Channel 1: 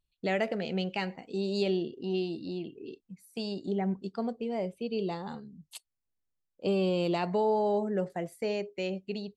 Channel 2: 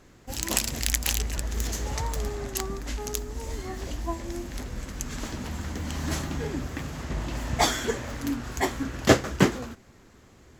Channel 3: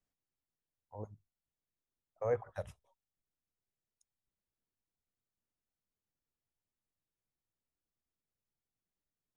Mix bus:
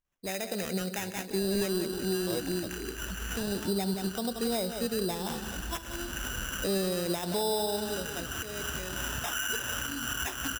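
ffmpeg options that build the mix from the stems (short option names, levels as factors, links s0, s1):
-filter_complex "[0:a]dynaudnorm=f=120:g=9:m=3.55,volume=0.398,afade=t=out:st=7.41:d=0.55:silence=0.266073,asplit=3[s0][s1][s2];[s1]volume=0.299[s3];[1:a]acompressor=threshold=0.01:ratio=3,lowpass=f=1500:t=q:w=11,adelay=1650,volume=1.33,asplit=2[s4][s5];[s5]volume=0.188[s6];[2:a]adelay=50,volume=0.75[s7];[s2]apad=whole_len=539813[s8];[s4][s8]sidechaincompress=threshold=0.00794:ratio=4:attack=9:release=347[s9];[s3][s6]amix=inputs=2:normalize=0,aecho=0:1:178|356|534|712|890:1|0.33|0.109|0.0359|0.0119[s10];[s0][s9][s7][s10]amix=inputs=4:normalize=0,acrusher=samples=10:mix=1:aa=0.000001,highshelf=f=3000:g=9,alimiter=limit=0.112:level=0:latency=1:release=154"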